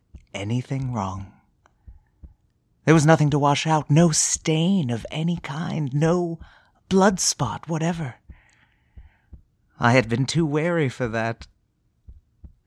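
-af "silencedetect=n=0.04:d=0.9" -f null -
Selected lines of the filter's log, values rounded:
silence_start: 1.22
silence_end: 2.87 | silence_duration: 1.66
silence_start: 8.11
silence_end: 9.81 | silence_duration: 1.70
silence_start: 11.42
silence_end: 12.66 | silence_duration: 1.24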